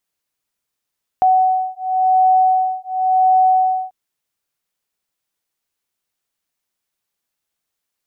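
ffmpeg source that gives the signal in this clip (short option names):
-f lavfi -i "aevalsrc='0.178*(sin(2*PI*748*t)+sin(2*PI*748.93*t))':d=2.69:s=44100"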